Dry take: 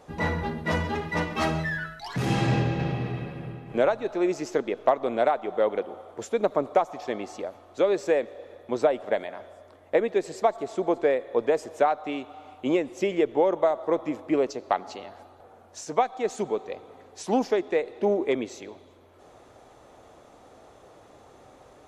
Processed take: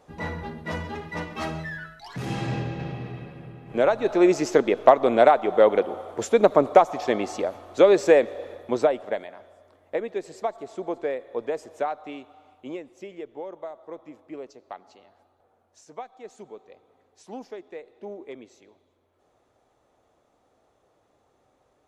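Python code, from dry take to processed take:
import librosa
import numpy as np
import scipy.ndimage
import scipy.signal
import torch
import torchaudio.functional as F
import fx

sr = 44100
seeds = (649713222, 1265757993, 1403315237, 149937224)

y = fx.gain(x, sr, db=fx.line((3.52, -5.0), (4.1, 7.0), (8.46, 7.0), (9.35, -5.5), (12.04, -5.5), (13.08, -14.5)))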